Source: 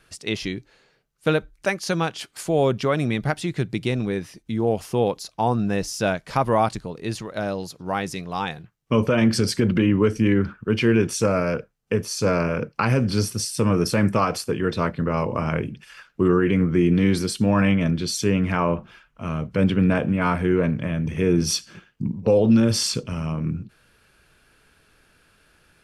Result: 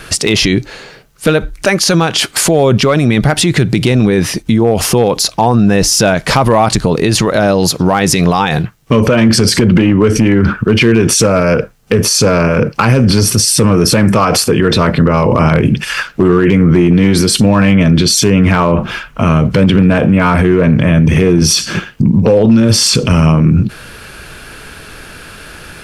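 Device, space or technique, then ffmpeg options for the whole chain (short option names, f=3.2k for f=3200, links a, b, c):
loud club master: -af "acompressor=threshold=-24dB:ratio=2,asoftclip=type=hard:threshold=-16.5dB,alimiter=level_in=28dB:limit=-1dB:release=50:level=0:latency=1,volume=-1dB"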